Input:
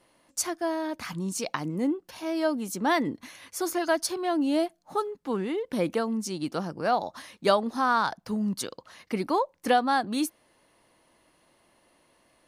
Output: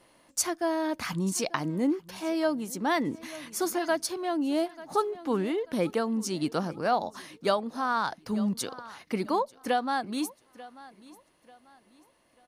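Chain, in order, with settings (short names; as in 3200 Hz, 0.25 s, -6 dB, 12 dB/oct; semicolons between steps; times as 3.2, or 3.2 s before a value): feedback echo 0.89 s, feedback 34%, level -20.5 dB; vocal rider within 5 dB 0.5 s; gain -1 dB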